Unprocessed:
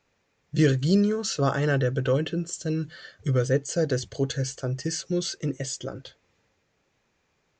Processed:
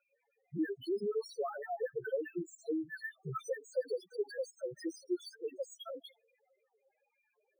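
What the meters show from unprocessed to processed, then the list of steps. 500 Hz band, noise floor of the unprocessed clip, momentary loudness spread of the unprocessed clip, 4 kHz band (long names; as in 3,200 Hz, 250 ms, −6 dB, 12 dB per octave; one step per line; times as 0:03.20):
−9.5 dB, −72 dBFS, 10 LU, −18.0 dB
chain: time-frequency cells dropped at random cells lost 28%
high-pass filter 450 Hz 12 dB per octave
downward compressor, threshold −38 dBFS, peak gain reduction 14 dB
spectral peaks only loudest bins 2
high-frequency loss of the air 130 metres
linearly interpolated sample-rate reduction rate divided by 3×
level +10.5 dB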